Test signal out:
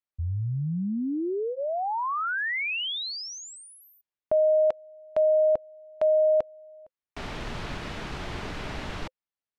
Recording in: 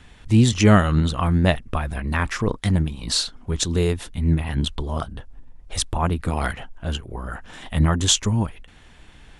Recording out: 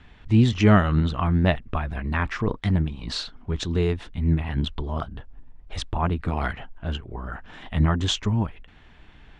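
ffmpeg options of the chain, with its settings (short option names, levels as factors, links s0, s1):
-af "lowpass=3400,bandreject=f=520:w=12,volume=0.794"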